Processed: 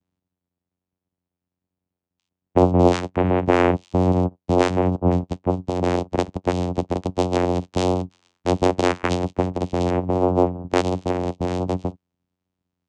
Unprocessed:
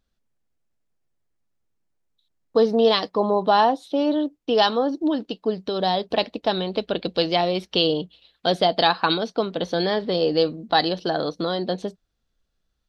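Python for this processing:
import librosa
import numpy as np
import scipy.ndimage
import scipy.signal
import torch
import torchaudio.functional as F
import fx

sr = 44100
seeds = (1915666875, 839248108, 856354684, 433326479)

y = fx.high_shelf_res(x, sr, hz=1700.0, db=-10.5, q=1.5, at=(9.9, 10.54))
y = fx.vocoder(y, sr, bands=4, carrier='saw', carrier_hz=89.7)
y = fx.vibrato(y, sr, rate_hz=1.3, depth_cents=25.0)
y = F.gain(torch.from_numpy(y), 2.0).numpy()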